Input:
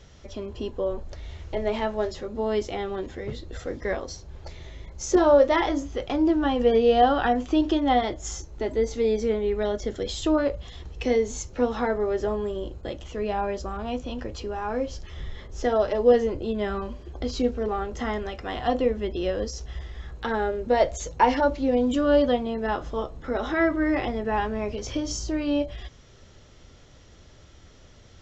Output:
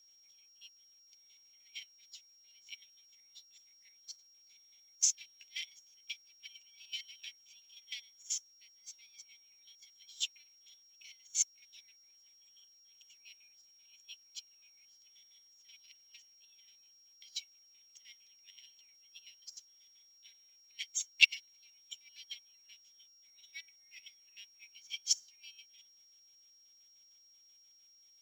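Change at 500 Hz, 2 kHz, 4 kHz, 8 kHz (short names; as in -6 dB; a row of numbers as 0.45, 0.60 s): under -40 dB, -7.5 dB, -3.0 dB, n/a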